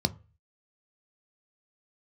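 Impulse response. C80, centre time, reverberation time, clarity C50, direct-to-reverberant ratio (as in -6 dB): 28.0 dB, 3 ms, 0.35 s, 22.5 dB, 10.5 dB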